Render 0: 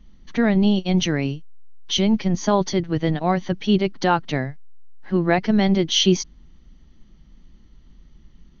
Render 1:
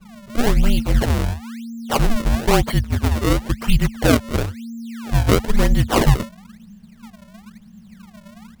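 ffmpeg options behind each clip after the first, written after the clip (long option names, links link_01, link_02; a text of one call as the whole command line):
ffmpeg -i in.wav -af "afreqshift=-230,acrusher=samples=31:mix=1:aa=0.000001:lfo=1:lforange=49.6:lforate=1,volume=3.5dB" out.wav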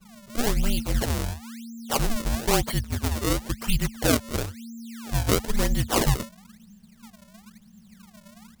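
ffmpeg -i in.wav -af "bass=frequency=250:gain=-2,treble=frequency=4000:gain=8,volume=-6.5dB" out.wav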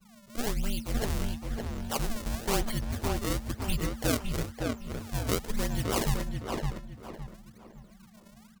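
ffmpeg -i in.wav -filter_complex "[0:a]asplit=2[link_01][link_02];[link_02]adelay=562,lowpass=frequency=2500:poles=1,volume=-3dB,asplit=2[link_03][link_04];[link_04]adelay=562,lowpass=frequency=2500:poles=1,volume=0.34,asplit=2[link_05][link_06];[link_06]adelay=562,lowpass=frequency=2500:poles=1,volume=0.34,asplit=2[link_07][link_08];[link_08]adelay=562,lowpass=frequency=2500:poles=1,volume=0.34[link_09];[link_01][link_03][link_05][link_07][link_09]amix=inputs=5:normalize=0,volume=-7dB" out.wav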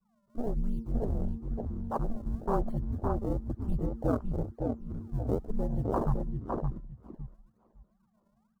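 ffmpeg -i in.wav -af "afwtdn=0.0282,highshelf=frequency=1600:width_type=q:width=1.5:gain=-12" out.wav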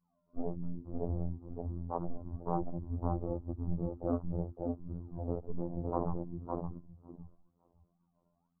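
ffmpeg -i in.wav -af "lowpass=frequency=1100:width=0.5412,lowpass=frequency=1100:width=1.3066,afftfilt=real='hypot(re,im)*cos(PI*b)':imag='0':win_size=2048:overlap=0.75" out.wav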